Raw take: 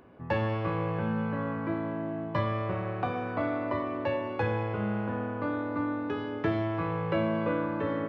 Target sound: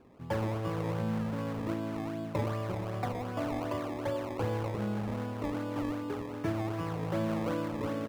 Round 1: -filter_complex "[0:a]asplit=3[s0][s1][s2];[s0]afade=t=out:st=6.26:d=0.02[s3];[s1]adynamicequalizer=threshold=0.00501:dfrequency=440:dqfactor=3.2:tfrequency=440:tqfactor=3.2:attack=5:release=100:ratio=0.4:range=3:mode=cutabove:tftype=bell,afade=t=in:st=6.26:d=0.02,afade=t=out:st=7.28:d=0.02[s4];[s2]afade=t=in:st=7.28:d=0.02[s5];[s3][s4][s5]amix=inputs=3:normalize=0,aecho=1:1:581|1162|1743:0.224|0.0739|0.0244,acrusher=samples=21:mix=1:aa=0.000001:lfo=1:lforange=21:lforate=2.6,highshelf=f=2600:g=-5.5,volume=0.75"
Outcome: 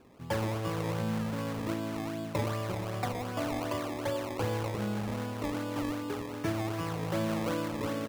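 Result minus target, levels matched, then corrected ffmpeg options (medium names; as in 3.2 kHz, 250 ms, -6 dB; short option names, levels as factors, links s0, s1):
4 kHz band +5.5 dB
-filter_complex "[0:a]asplit=3[s0][s1][s2];[s0]afade=t=out:st=6.26:d=0.02[s3];[s1]adynamicequalizer=threshold=0.00501:dfrequency=440:dqfactor=3.2:tfrequency=440:tqfactor=3.2:attack=5:release=100:ratio=0.4:range=3:mode=cutabove:tftype=bell,afade=t=in:st=6.26:d=0.02,afade=t=out:st=7.28:d=0.02[s4];[s2]afade=t=in:st=7.28:d=0.02[s5];[s3][s4][s5]amix=inputs=3:normalize=0,aecho=1:1:581|1162|1743:0.224|0.0739|0.0244,acrusher=samples=21:mix=1:aa=0.000001:lfo=1:lforange=21:lforate=2.6,highshelf=f=2600:g=-15,volume=0.75"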